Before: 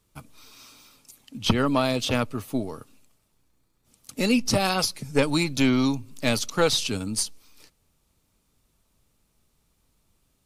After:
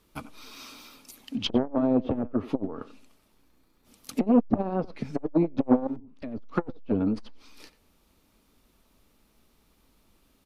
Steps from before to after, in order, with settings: peak limiter -13 dBFS, peak gain reduction 8 dB; graphic EQ 125/250/8000 Hz -8/+5/-8 dB; low-pass that closes with the level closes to 480 Hz, closed at -22.5 dBFS; bass shelf 220 Hz -2.5 dB; 5.87–6.38 s: level held to a coarse grid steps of 19 dB; speakerphone echo 90 ms, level -15 dB; transformer saturation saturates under 390 Hz; trim +6.5 dB

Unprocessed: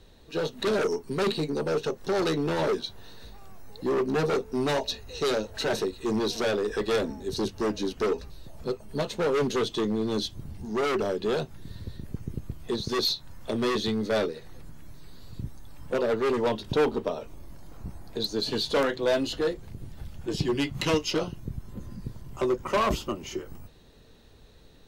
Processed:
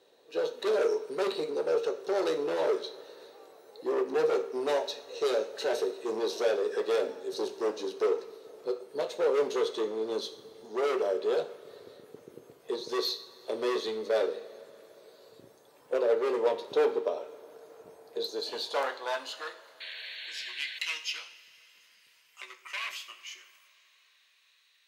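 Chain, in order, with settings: high-pass sweep 470 Hz -> 2.2 kHz, 18.17–20.36 s; two-slope reverb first 0.54 s, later 4.4 s, from -18 dB, DRR 6.5 dB; painted sound noise, 19.80–20.79 s, 1.5–4.5 kHz -35 dBFS; trim -7 dB

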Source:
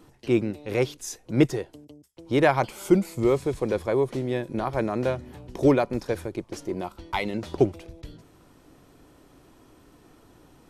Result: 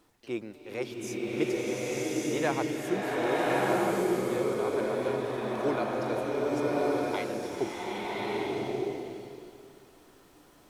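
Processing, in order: high-pass 400 Hz 6 dB/octave; added noise pink -64 dBFS; swelling reverb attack 1180 ms, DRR -7 dB; trim -8.5 dB

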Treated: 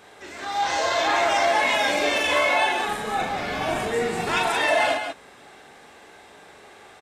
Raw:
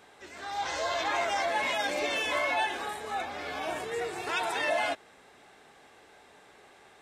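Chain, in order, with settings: 2.86–4.43 s: octave divider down 1 oct, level +2 dB; loudspeakers at several distances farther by 14 m -3 dB, 62 m -6 dB; trim +6 dB

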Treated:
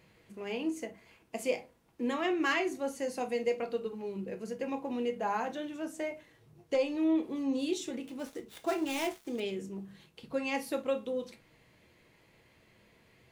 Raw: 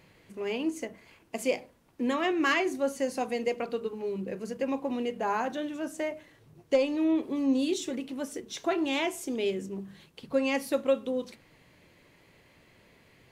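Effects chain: 8.03–9.40 s: dead-time distortion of 0.086 ms; reverberation, pre-delay 3 ms, DRR 7.5 dB; trim -4.5 dB

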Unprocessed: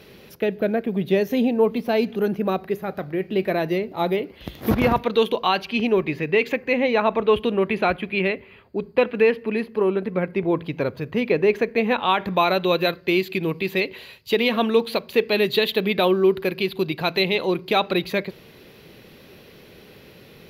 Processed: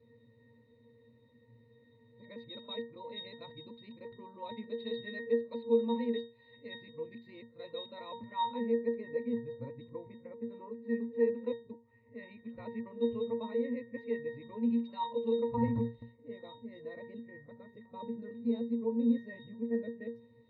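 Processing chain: reverse the whole clip; pitch-class resonator A#, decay 0.32 s; trim -1.5 dB

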